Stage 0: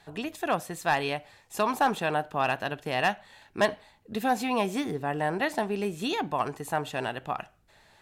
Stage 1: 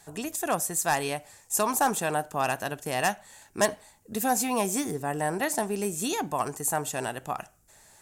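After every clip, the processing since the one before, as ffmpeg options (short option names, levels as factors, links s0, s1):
-af "highshelf=f=5100:t=q:w=1.5:g=13.5,bandreject=f=4100:w=29"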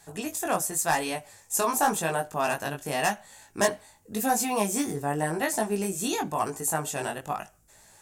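-af "flanger=delay=18:depth=3.4:speed=0.91,volume=1.5"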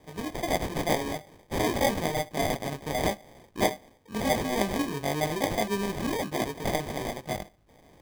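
-af "acrusher=samples=32:mix=1:aa=0.000001,volume=0.891"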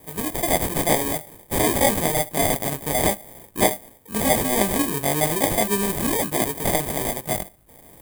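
-filter_complex "[0:a]aexciter=amount=3:drive=9.6:freq=7900,acrossover=split=7500[s0][s1];[s1]asoftclip=type=tanh:threshold=0.0794[s2];[s0][s2]amix=inputs=2:normalize=0,volume=1.88"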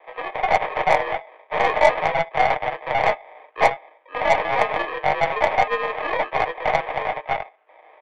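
-af "highpass=f=490:t=q:w=0.5412,highpass=f=490:t=q:w=1.307,lowpass=f=2700:t=q:w=0.5176,lowpass=f=2700:t=q:w=0.7071,lowpass=f=2700:t=q:w=1.932,afreqshift=60,aeval=exprs='0.422*(cos(1*acos(clip(val(0)/0.422,-1,1)))-cos(1*PI/2))+0.0211*(cos(8*acos(clip(val(0)/0.422,-1,1)))-cos(8*PI/2))':c=same,aecho=1:1:6.5:0.35,volume=1.78"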